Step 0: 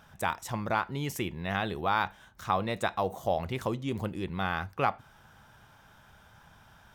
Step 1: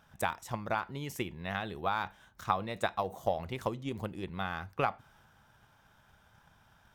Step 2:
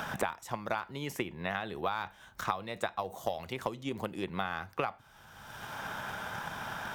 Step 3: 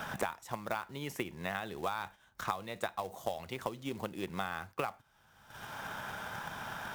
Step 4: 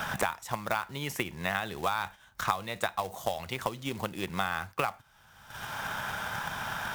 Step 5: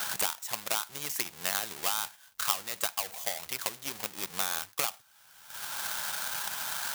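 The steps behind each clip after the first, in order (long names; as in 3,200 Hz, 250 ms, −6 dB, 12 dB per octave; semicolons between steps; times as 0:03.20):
transient designer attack +8 dB, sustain +3 dB; level −7.5 dB
low-shelf EQ 220 Hz −7.5 dB; multiband upward and downward compressor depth 100%
floating-point word with a short mantissa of 2 bits; noise gate −47 dBFS, range −8 dB; level −2.5 dB
parametric band 350 Hz −6 dB 2 octaves; level +8 dB
each half-wave held at its own peak; spectral tilt +4 dB per octave; level −9.5 dB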